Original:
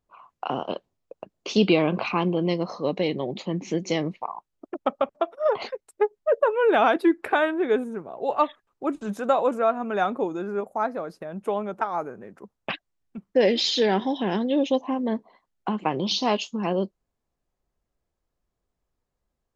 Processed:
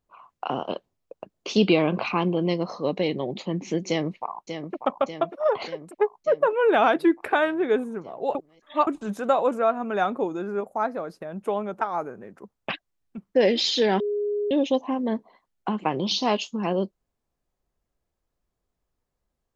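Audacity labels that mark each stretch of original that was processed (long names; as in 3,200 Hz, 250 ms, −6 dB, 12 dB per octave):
3.880000	4.760000	delay throw 590 ms, feedback 65%, level −8.5 dB
8.350000	8.870000	reverse
14.000000	14.510000	beep over 413 Hz −23 dBFS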